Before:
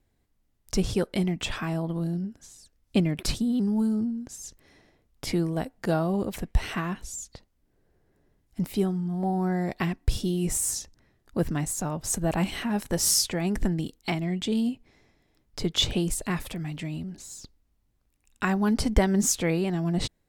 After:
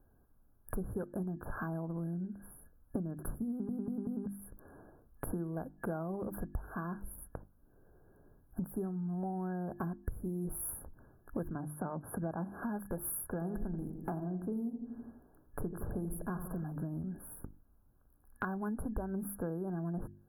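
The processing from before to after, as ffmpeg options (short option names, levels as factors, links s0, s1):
-filter_complex "[0:a]asettb=1/sr,asplit=3[s0][s1][s2];[s0]atrim=end=11.554[s3];[s1]atrim=start=11.55:end=12.63,asetpts=PTS-STARTPTS,afade=t=in:d=0.004:c=qsin,afade=t=out:st=1.076:d=0.004:c=qsin,highpass=100,lowpass=7300[s4];[s2]atrim=start=12.626[s5];[s3][s4]acrossfade=d=0.004:c1=hsin:c2=qsin[s6];[s6][s5]acrossfade=d=0.004:c1=qsin:c2=hsin,asettb=1/sr,asplit=3[s7][s8][s9];[s7]atrim=end=13.294[s10];[s8]atrim=start=13.29:end=16.64,asetpts=PTS-STARTPTS,afade=t=in:d=0.004:c=qsin,afade=t=out:st=3.346:d=0.004:c=qsin,asplit=2[s11][s12];[s12]adelay=83,lowpass=f=1200:p=1,volume=0.355,asplit=2[s13][s14];[s14]adelay=83,lowpass=f=1200:p=1,volume=0.52,asplit=2[s15][s16];[s16]adelay=83,lowpass=f=1200:p=1,volume=0.52,asplit=2[s17][s18];[s18]adelay=83,lowpass=f=1200:p=1,volume=0.52,asplit=2[s19][s20];[s20]adelay=83,lowpass=f=1200:p=1,volume=0.52,asplit=2[s21][s22];[s22]adelay=83,lowpass=f=1200:p=1,volume=0.52[s23];[s11][s13][s15][s17][s19][s21][s23]amix=inputs=7:normalize=0,atrim=end_sample=147735[s24];[s9]atrim=start=16.636[s25];[s10][s24]acrossfade=d=0.004:c1=hsin:c2=qsin[s26];[s26][s25]acrossfade=d=0.004:c1=qsin:c2=hsin,asplit=5[s27][s28][s29][s30][s31];[s27]atrim=end=3.692[s32];[s28]atrim=start=3.498:end=3.692[s33];[s29]atrim=start=3.498:end=3.692[s34];[s30]atrim=start=3.498:end=3.692[s35];[s31]atrim=start=4.258[s36];[s32][s33]acrossfade=d=0.004:c1=hsin:c2=hsin[s37];[s37][s34]acrossfade=d=0.004:c1=hsin:c2=hsin[s38];[s38][s35]acrossfade=d=0.004:c1=hsin:c2=hsin[s39];[s39][s36]acrossfade=d=0.004:c1=hsin:c2=hsin,bandreject=f=50:t=h:w=6,bandreject=f=100:t=h:w=6,bandreject=f=150:t=h:w=6,bandreject=f=200:t=h:w=6,bandreject=f=250:t=h:w=6,bandreject=f=300:t=h:w=6,bandreject=f=350:t=h:w=6,afftfilt=real='re*(1-between(b*sr/4096,1700,9900))':imag='im*(1-between(b*sr/4096,1700,9900))':win_size=4096:overlap=0.75,acompressor=threshold=0.00891:ratio=6,volume=1.78"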